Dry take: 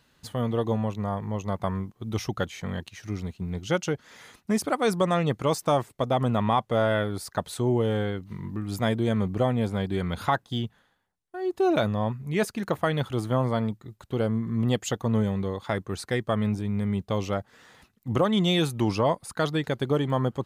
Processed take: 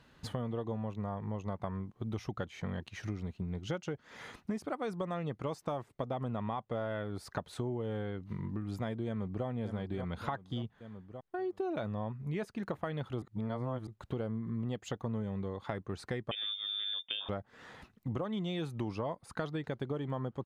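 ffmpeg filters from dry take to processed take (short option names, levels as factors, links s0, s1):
-filter_complex "[0:a]asplit=2[s0][s1];[s1]afade=t=in:st=9.06:d=0.01,afade=t=out:st=9.46:d=0.01,aecho=0:1:580|1160|1740|2320:0.316228|0.126491|0.0505964|0.0202386[s2];[s0][s2]amix=inputs=2:normalize=0,asettb=1/sr,asplit=3[s3][s4][s5];[s3]atrim=end=16.314[s6];[s4]atrim=start=16.31:end=17.29,asetpts=PTS-STARTPTS,afade=t=in:d=0.004:c=qsin,afade=t=out:st=0.976:d=0.004:c=qsin,lowpass=f=3100:t=q:w=0.5098,lowpass=f=3100:t=q:w=0.6013,lowpass=f=3100:t=q:w=0.9,lowpass=f=3100:t=q:w=2.563,afreqshift=-3700[s7];[s5]atrim=start=17.286[s8];[s6][s7]acrossfade=d=0.004:c1=hsin:c2=qsin[s9];[s9][s8]acrossfade=d=0.004:c1=qsin:c2=hsin,asplit=3[s10][s11][s12];[s10]atrim=end=13.222[s13];[s11]atrim=start=13.218:end=13.872,asetpts=PTS-STARTPTS,areverse[s14];[s12]atrim=start=13.868[s15];[s13][s14]acrossfade=d=0.004:c1=hsin:c2=hsin[s16];[s16][s15]acrossfade=d=0.004:c1=hsin:c2=hsin,lowpass=f=2300:p=1,acompressor=threshold=0.0112:ratio=5,volume=1.5"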